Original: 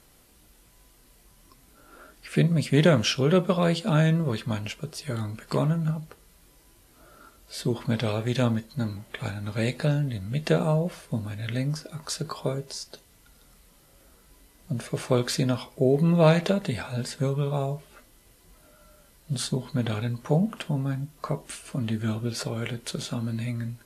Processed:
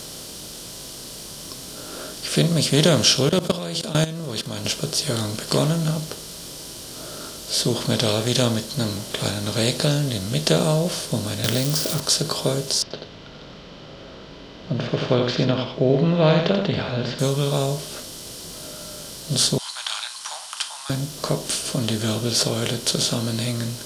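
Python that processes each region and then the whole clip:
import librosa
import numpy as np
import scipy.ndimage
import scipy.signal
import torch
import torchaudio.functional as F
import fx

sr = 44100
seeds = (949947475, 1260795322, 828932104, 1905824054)

y = fx.chain(x, sr, fx.highpass(hz=43.0, slope=12),
    fx.level_steps(step_db=20), at=(3.29, 4.65))
y = fx.chain(y, sr, fx.crossing_spikes(level_db=-29.0),
    fx.peak_eq(hz=7600.0, db=-6.5, octaves=2.0),
    fx.band_squash(depth_pct=100), at=(11.44, 12.0))
y = fx.chain(y, sr, fx.cheby2_lowpass(hz=8500.0, order=4, stop_db=60),
    fx.echo_single(ms=85, db=-8.0), at=(12.82, 17.19))
y = fx.chain(y, sr, fx.halfwave_gain(db=-3.0),
    fx.steep_highpass(hz=850.0, slope=72),
    fx.resample_bad(factor=2, down='none', up='filtered'), at=(19.58, 20.9))
y = fx.bin_compress(y, sr, power=0.6)
y = fx.high_shelf_res(y, sr, hz=3000.0, db=9.0, q=1.5)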